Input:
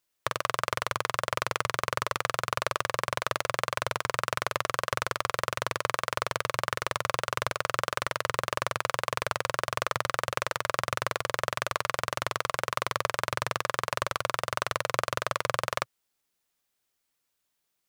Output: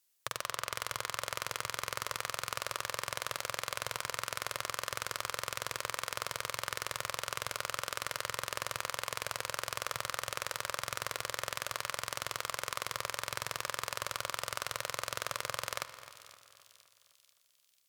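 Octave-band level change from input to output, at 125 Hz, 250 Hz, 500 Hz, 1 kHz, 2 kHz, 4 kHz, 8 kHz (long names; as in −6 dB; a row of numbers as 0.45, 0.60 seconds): −11.0, −11.5, −10.5, −9.0, −7.0, −3.5, 0.0 decibels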